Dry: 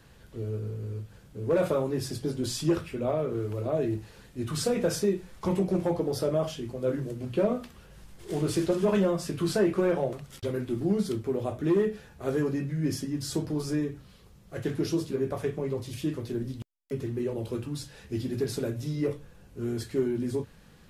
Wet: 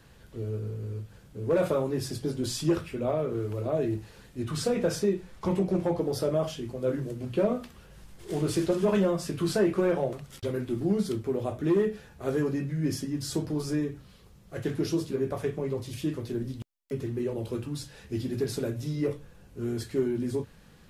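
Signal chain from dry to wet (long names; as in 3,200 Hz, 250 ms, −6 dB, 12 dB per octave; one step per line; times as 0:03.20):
0:04.42–0:05.98: high-shelf EQ 6,900 Hz −5.5 dB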